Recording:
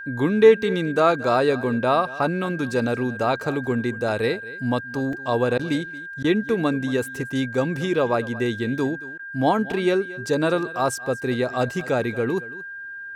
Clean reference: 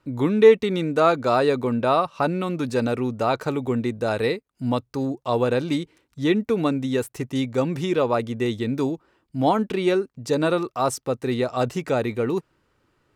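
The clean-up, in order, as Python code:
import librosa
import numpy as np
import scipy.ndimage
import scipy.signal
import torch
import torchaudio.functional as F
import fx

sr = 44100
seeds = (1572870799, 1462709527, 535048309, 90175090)

y = fx.notch(x, sr, hz=1600.0, q=30.0)
y = fx.fix_interpolate(y, sr, at_s=(5.13, 9.72, 11.81), length_ms=1.7)
y = fx.fix_interpolate(y, sr, at_s=(5.58, 6.23, 9.18), length_ms=11.0)
y = fx.fix_echo_inverse(y, sr, delay_ms=227, level_db=-18.5)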